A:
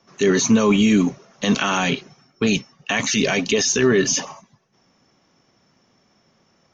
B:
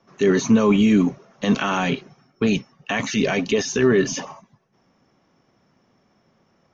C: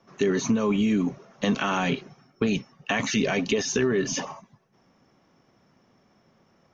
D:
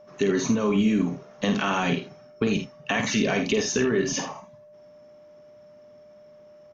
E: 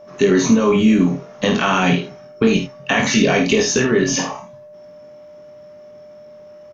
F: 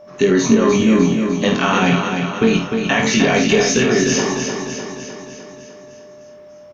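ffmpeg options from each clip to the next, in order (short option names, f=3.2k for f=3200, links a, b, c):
-af "highshelf=f=3.3k:g=-11.5"
-af "acompressor=threshold=-20dB:ratio=6"
-filter_complex "[0:a]aeval=exprs='val(0)+0.00447*sin(2*PI*600*n/s)':c=same,asplit=2[a][b];[b]aecho=0:1:51|80:0.422|0.224[c];[a][c]amix=inputs=2:normalize=0"
-filter_complex "[0:a]asplit=2[a][b];[b]adelay=22,volume=-4dB[c];[a][c]amix=inputs=2:normalize=0,volume=7dB"
-af "aecho=1:1:302|604|906|1208|1510|1812|2114|2416:0.501|0.291|0.169|0.0978|0.0567|0.0329|0.0191|0.0111"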